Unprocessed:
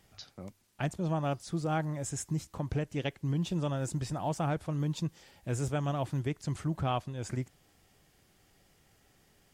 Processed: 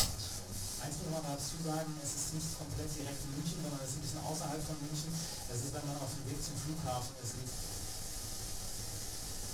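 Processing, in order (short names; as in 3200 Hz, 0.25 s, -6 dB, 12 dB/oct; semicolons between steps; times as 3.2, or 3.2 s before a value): delta modulation 64 kbps, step -33 dBFS; resonant high shelf 3900 Hz +9.5 dB, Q 1.5; flipped gate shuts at -26 dBFS, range -28 dB; shoebox room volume 130 m³, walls furnished, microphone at 4 m; in parallel at -9 dB: Schmitt trigger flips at -45 dBFS; on the sum: gain +8.5 dB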